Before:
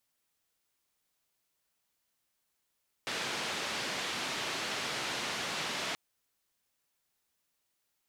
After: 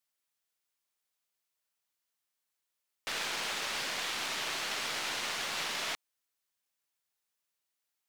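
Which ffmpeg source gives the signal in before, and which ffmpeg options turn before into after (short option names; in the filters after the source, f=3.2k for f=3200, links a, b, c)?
-f lavfi -i "anoisesrc=c=white:d=2.88:r=44100:seed=1,highpass=f=140,lowpass=f=4000,volume=-24dB"
-af "lowshelf=f=440:g=-9,aeval=exprs='0.0562*(cos(1*acos(clip(val(0)/0.0562,-1,1)))-cos(1*PI/2))+0.00708*(cos(2*acos(clip(val(0)/0.0562,-1,1)))-cos(2*PI/2))+0.00891*(cos(5*acos(clip(val(0)/0.0562,-1,1)))-cos(5*PI/2))+0.01*(cos(7*acos(clip(val(0)/0.0562,-1,1)))-cos(7*PI/2))':c=same"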